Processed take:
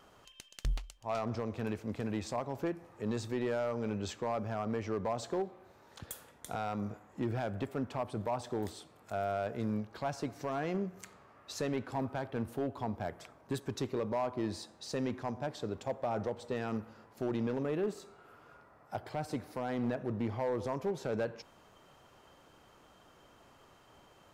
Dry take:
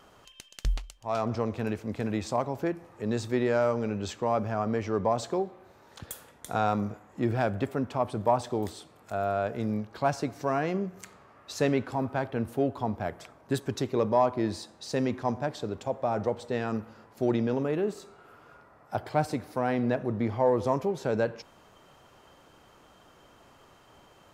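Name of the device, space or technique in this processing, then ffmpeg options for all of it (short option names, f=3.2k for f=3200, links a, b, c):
limiter into clipper: -af "alimiter=limit=-19.5dB:level=0:latency=1:release=202,asoftclip=type=hard:threshold=-23dB,volume=-4dB"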